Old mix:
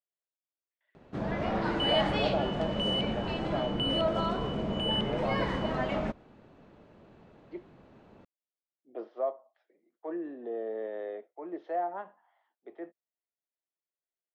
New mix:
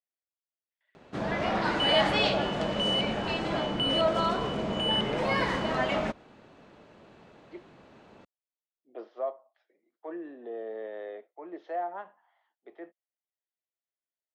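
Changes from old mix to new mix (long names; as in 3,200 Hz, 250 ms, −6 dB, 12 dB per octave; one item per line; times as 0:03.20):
first sound +4.5 dB
master: add spectral tilt +2 dB per octave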